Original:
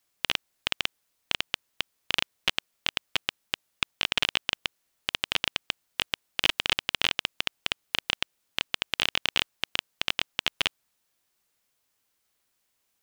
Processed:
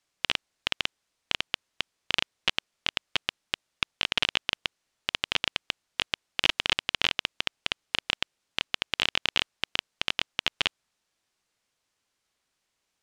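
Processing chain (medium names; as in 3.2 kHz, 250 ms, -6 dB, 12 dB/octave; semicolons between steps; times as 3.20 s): low-pass 7.4 kHz 12 dB/octave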